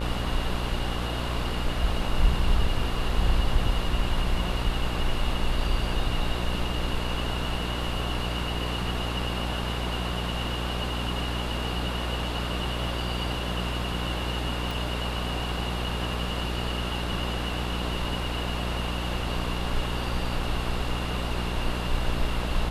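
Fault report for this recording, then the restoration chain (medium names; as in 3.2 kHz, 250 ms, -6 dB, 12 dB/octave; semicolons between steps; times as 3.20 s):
buzz 60 Hz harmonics 25 -31 dBFS
14.71 s: pop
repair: de-click; de-hum 60 Hz, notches 25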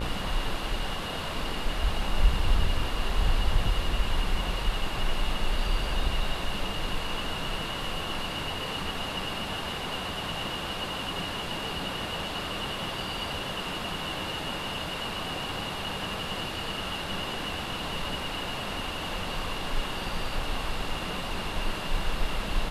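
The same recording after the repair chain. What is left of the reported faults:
nothing left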